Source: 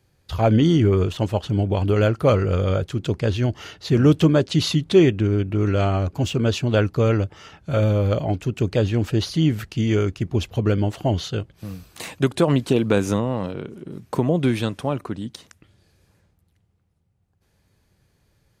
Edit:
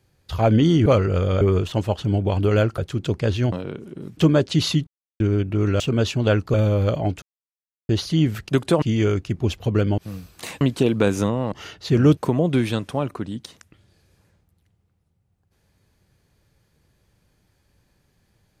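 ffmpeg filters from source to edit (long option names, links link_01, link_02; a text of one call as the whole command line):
ffmpeg -i in.wav -filter_complex "[0:a]asplit=18[link_01][link_02][link_03][link_04][link_05][link_06][link_07][link_08][link_09][link_10][link_11][link_12][link_13][link_14][link_15][link_16][link_17][link_18];[link_01]atrim=end=0.862[link_19];[link_02]atrim=start=2.228:end=2.782[link_20];[link_03]atrim=start=0.858:end=2.232[link_21];[link_04]atrim=start=2.778:end=3.522[link_22];[link_05]atrim=start=13.418:end=14.072[link_23];[link_06]atrim=start=4.168:end=4.87,asetpts=PTS-STARTPTS,afade=type=out:start_time=0.698:duration=0.004:curve=hsin[link_24];[link_07]atrim=start=4.87:end=5.2,asetpts=PTS-STARTPTS,volume=0[link_25];[link_08]atrim=start=5.2:end=5.802,asetpts=PTS-STARTPTS,afade=type=in:duration=0.004:curve=hsin[link_26];[link_09]atrim=start=6.268:end=7.012[link_27];[link_10]atrim=start=7.778:end=8.46,asetpts=PTS-STARTPTS,afade=type=out:start_time=0.678:duration=0.004:curve=hsin[link_28];[link_11]atrim=start=8.46:end=9.13,asetpts=PTS-STARTPTS,volume=0[link_29];[link_12]atrim=start=9.13:end=9.732,asetpts=PTS-STARTPTS,afade=type=in:duration=0.004:curve=hsin[link_30];[link_13]atrim=start=12.178:end=12.512[link_31];[link_14]atrim=start=9.728:end=10.892[link_32];[link_15]atrim=start=11.548:end=12.182[link_33];[link_16]atrim=start=12.508:end=13.422[link_34];[link_17]atrim=start=3.518:end=4.172[link_35];[link_18]atrim=start=14.068[link_36];[link_19][link_20]acrossfade=duration=0.004:curve1=hsin:curve2=hsin[link_37];[link_37][link_21]acrossfade=duration=0.004:curve1=hsin:curve2=hsin[link_38];[link_38][link_22]acrossfade=duration=0.004:curve1=hsin:curve2=hsin[link_39];[link_39][link_23]acrossfade=duration=0.004:curve1=hsin:curve2=hsin[link_40];[link_24][link_25][link_26]concat=n=3:v=0:a=1[link_41];[link_40][link_41]acrossfade=duration=0.004:curve1=hsin:curve2=hsin[link_42];[link_42][link_27]acrossfade=duration=0.004:curve1=hsin:curve2=hsin[link_43];[link_28][link_29][link_30]concat=n=3:v=0:a=1[link_44];[link_43][link_44]acrossfade=duration=0.004:curve1=hsin:curve2=hsin[link_45];[link_45][link_31]acrossfade=duration=0.004:curve1=hsin:curve2=hsin[link_46];[link_46][link_32]acrossfade=duration=0.004:curve1=hsin:curve2=hsin[link_47];[link_47][link_33]acrossfade=duration=0.004:curve1=hsin:curve2=hsin[link_48];[link_48][link_34]acrossfade=duration=0.004:curve1=hsin:curve2=hsin[link_49];[link_49][link_35]acrossfade=duration=0.004:curve1=hsin:curve2=hsin[link_50];[link_50][link_36]acrossfade=duration=0.004:curve1=hsin:curve2=hsin" out.wav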